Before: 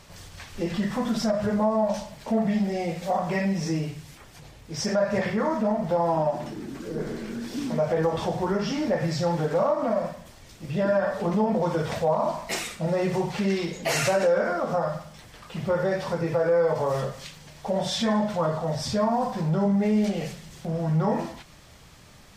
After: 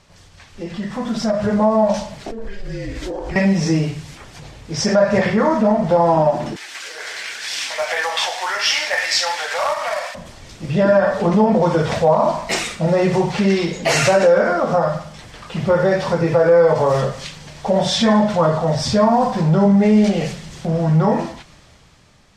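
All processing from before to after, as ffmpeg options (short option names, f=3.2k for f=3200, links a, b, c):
-filter_complex "[0:a]asettb=1/sr,asplit=3[a][b][c];[a]atrim=end=2.224[d];[b]atrim=start=2.22:end=3.36,asetpts=PTS-STARTPTS,afade=t=in:d=0.004:c=qsin,afade=t=out:st=1.136:d=0.004:c=qsin,lowshelf=f=80:g=-10.5,acompressor=threshold=-32dB:ratio=10:attack=3.2:release=140:knee=1:detection=peak,afreqshift=-220[e];[c]atrim=start=3.356[f];[d][e]acrossfade=d=0.004:c1=hsin:c2=qsin[g];[g][f]acrossfade=d=0.004:c1=qsin:c2=hsin,asettb=1/sr,asplit=3[h][i][j];[h]atrim=end=6.564[k];[i]atrim=start=6.56:end=10.15,asetpts=PTS-STARTPTS,afade=t=in:d=0.004:c=qsin,afade=t=out:st=3.586:d=0.004:c=qsin,highpass=f=750:w=0.5412,highpass=f=750:w=1.3066,highshelf=f=1.5k:t=q:w=1.5:g=8,acrusher=bits=3:mode=log:mix=0:aa=0.000001[l];[j]atrim=start=10.146[m];[k][l]acrossfade=d=0.004:c1=hsin:c2=qsin[n];[n][m]acrossfade=d=0.004:c1=qsin:c2=hsin,dynaudnorm=f=280:g=9:m=14dB,lowpass=8.4k,volume=-2.5dB"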